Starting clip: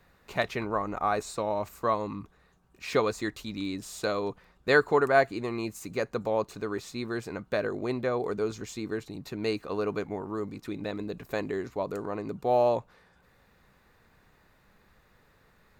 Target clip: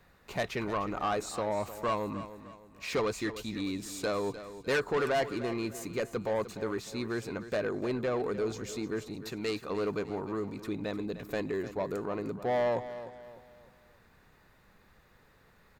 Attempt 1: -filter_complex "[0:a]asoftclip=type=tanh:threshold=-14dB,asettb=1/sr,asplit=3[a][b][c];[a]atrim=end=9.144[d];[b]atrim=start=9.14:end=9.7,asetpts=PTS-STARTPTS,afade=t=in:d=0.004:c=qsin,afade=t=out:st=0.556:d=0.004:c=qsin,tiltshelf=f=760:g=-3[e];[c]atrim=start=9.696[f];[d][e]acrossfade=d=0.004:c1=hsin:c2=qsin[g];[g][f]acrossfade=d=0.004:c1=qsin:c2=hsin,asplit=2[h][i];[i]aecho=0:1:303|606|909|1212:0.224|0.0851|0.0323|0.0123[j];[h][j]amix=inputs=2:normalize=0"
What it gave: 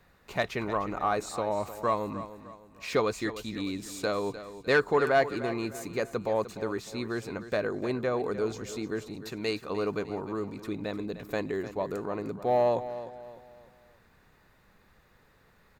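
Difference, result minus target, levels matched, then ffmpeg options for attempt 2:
soft clip: distortion -11 dB
-filter_complex "[0:a]asoftclip=type=tanh:threshold=-24.5dB,asettb=1/sr,asplit=3[a][b][c];[a]atrim=end=9.144[d];[b]atrim=start=9.14:end=9.7,asetpts=PTS-STARTPTS,afade=t=in:d=0.004:c=qsin,afade=t=out:st=0.556:d=0.004:c=qsin,tiltshelf=f=760:g=-3[e];[c]atrim=start=9.696[f];[d][e]acrossfade=d=0.004:c1=hsin:c2=qsin[g];[g][f]acrossfade=d=0.004:c1=qsin:c2=hsin,asplit=2[h][i];[i]aecho=0:1:303|606|909|1212:0.224|0.0851|0.0323|0.0123[j];[h][j]amix=inputs=2:normalize=0"

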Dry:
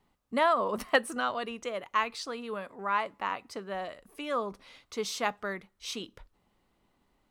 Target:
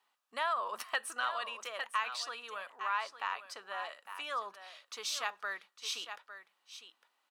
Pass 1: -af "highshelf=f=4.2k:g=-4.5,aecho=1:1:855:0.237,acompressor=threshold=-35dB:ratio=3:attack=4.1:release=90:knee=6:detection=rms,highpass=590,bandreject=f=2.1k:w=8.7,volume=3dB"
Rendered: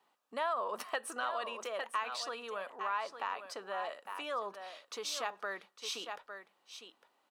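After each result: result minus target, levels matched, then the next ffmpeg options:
500 Hz band +6.5 dB; compressor: peak gain reduction +5.5 dB
-af "highshelf=f=4.2k:g=-4.5,aecho=1:1:855:0.237,acompressor=threshold=-35dB:ratio=3:attack=4.1:release=90:knee=6:detection=rms,highpass=1.2k,bandreject=f=2.1k:w=8.7,volume=3dB"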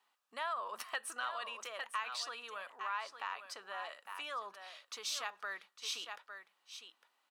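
compressor: peak gain reduction +5.5 dB
-af "highshelf=f=4.2k:g=-4.5,aecho=1:1:855:0.237,acompressor=threshold=-27dB:ratio=3:attack=4.1:release=90:knee=6:detection=rms,highpass=1.2k,bandreject=f=2.1k:w=8.7,volume=3dB"

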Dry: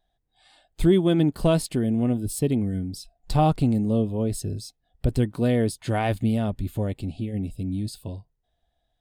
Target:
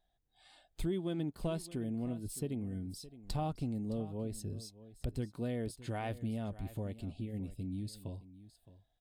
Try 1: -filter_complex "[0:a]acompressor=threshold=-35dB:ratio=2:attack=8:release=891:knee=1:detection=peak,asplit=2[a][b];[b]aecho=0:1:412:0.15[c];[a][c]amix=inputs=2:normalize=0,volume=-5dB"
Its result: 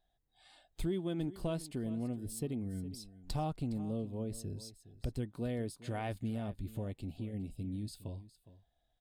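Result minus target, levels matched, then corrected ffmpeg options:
echo 0.204 s early
-filter_complex "[0:a]acompressor=threshold=-35dB:ratio=2:attack=8:release=891:knee=1:detection=peak,asplit=2[a][b];[b]aecho=0:1:616:0.15[c];[a][c]amix=inputs=2:normalize=0,volume=-5dB"

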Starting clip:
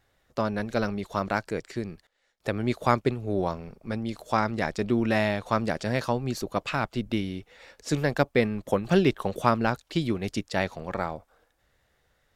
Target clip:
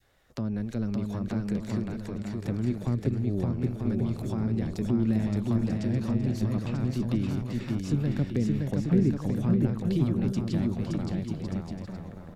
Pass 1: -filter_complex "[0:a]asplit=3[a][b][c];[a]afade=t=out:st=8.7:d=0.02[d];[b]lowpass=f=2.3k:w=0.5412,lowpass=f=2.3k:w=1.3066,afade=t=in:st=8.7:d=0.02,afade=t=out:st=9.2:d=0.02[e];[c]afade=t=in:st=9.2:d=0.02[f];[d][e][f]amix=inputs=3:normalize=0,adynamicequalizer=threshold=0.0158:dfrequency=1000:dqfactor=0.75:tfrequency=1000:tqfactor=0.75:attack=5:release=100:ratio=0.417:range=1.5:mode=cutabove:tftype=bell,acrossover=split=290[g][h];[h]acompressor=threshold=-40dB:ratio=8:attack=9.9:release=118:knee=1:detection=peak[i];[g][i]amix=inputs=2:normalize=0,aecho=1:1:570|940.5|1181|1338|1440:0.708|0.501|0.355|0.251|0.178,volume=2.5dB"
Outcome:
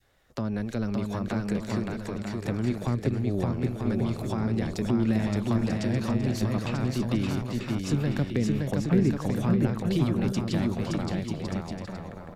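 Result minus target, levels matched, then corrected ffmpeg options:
compressor: peak gain reduction -8 dB
-filter_complex "[0:a]asplit=3[a][b][c];[a]afade=t=out:st=8.7:d=0.02[d];[b]lowpass=f=2.3k:w=0.5412,lowpass=f=2.3k:w=1.3066,afade=t=in:st=8.7:d=0.02,afade=t=out:st=9.2:d=0.02[e];[c]afade=t=in:st=9.2:d=0.02[f];[d][e][f]amix=inputs=3:normalize=0,adynamicequalizer=threshold=0.0158:dfrequency=1000:dqfactor=0.75:tfrequency=1000:tqfactor=0.75:attack=5:release=100:ratio=0.417:range=1.5:mode=cutabove:tftype=bell,acrossover=split=290[g][h];[h]acompressor=threshold=-49dB:ratio=8:attack=9.9:release=118:knee=1:detection=peak[i];[g][i]amix=inputs=2:normalize=0,aecho=1:1:570|940.5|1181|1338|1440:0.708|0.501|0.355|0.251|0.178,volume=2.5dB"

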